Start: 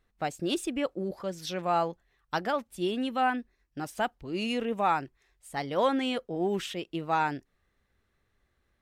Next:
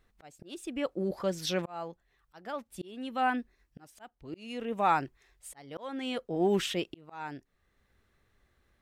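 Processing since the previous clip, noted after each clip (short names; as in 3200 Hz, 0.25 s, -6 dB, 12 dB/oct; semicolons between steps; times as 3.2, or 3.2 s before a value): auto swell 0.798 s; gain +3.5 dB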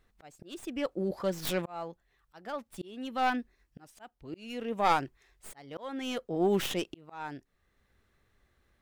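tracing distortion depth 0.16 ms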